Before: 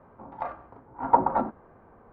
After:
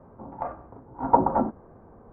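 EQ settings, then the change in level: air absorption 410 m; tilt shelf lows +6.5 dB, about 1300 Hz; 0.0 dB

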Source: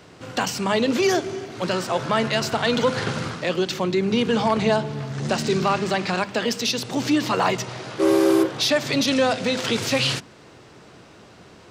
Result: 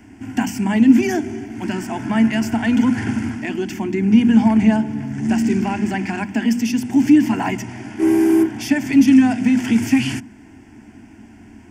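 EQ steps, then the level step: resonant low shelf 320 Hz +10 dB, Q 3; notches 60/120/180/240 Hz; fixed phaser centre 800 Hz, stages 8; +1.5 dB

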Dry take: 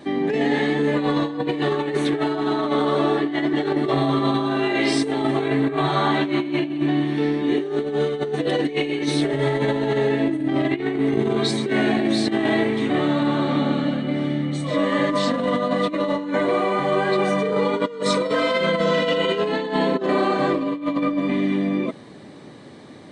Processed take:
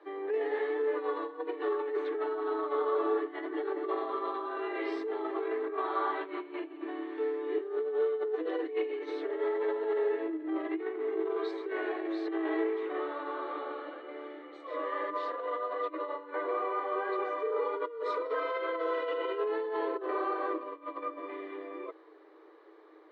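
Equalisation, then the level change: rippled Chebyshev high-pass 310 Hz, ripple 9 dB; air absorption 170 m; high shelf 2700 Hz -10 dB; -5.0 dB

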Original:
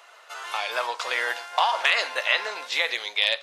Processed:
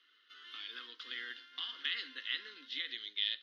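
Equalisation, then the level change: vowel filter i; fixed phaser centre 2300 Hz, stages 6; +3.5 dB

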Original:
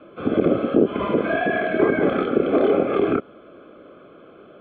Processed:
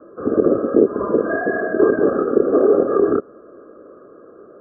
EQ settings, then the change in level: rippled Chebyshev low-pass 1700 Hz, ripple 9 dB; air absorption 480 m; bell 160 Hz -4.5 dB 0.41 oct; +7.0 dB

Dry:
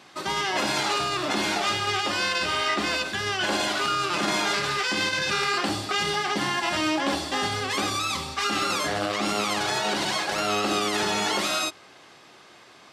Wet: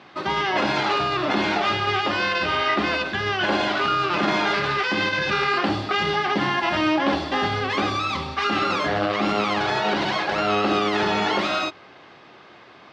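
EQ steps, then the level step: air absorption 240 m; +5.5 dB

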